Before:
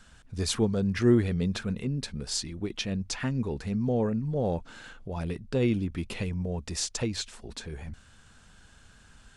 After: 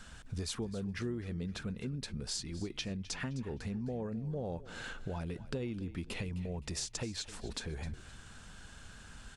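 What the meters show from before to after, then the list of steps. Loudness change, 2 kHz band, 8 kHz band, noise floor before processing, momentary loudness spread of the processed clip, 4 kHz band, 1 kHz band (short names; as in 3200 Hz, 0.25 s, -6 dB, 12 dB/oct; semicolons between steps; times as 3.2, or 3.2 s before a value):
-10.0 dB, -5.5 dB, -7.0 dB, -56 dBFS, 14 LU, -6.5 dB, -8.5 dB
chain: compressor 6:1, threshold -40 dBFS, peak gain reduction 22 dB; frequency-shifting echo 0.259 s, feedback 33%, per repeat -31 Hz, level -16 dB; gain +3.5 dB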